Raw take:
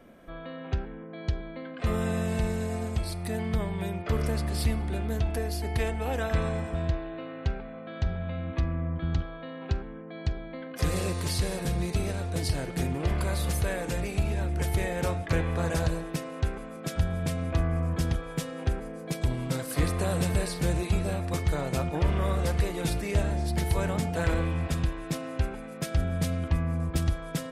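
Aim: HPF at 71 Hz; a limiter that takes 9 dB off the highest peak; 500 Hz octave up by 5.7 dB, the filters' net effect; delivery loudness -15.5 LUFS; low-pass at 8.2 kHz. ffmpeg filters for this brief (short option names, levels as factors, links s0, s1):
-af "highpass=71,lowpass=8200,equalizer=f=500:t=o:g=7,volume=6.68,alimiter=limit=0.562:level=0:latency=1"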